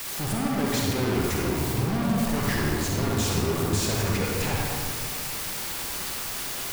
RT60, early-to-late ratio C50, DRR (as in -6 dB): 2.2 s, -2.5 dB, -3.5 dB